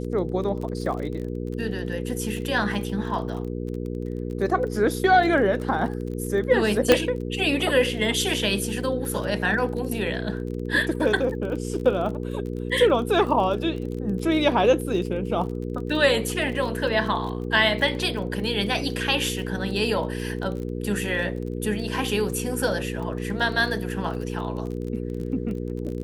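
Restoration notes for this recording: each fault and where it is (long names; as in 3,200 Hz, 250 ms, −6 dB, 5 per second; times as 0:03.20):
surface crackle 27 per second −32 dBFS
mains hum 60 Hz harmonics 8 −30 dBFS
0:06.92: click −2 dBFS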